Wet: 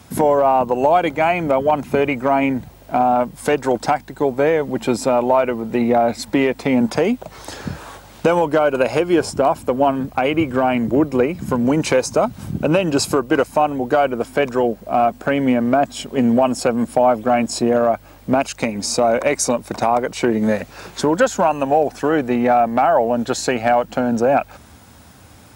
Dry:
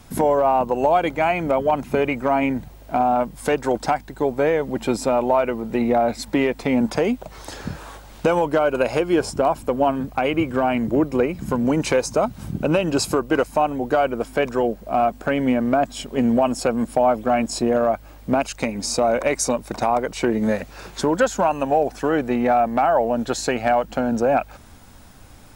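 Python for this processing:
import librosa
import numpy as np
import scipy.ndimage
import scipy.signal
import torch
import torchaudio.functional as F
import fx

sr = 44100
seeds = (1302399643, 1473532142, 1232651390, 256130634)

y = scipy.signal.sosfilt(scipy.signal.butter(4, 62.0, 'highpass', fs=sr, output='sos'), x)
y = y * 10.0 ** (3.0 / 20.0)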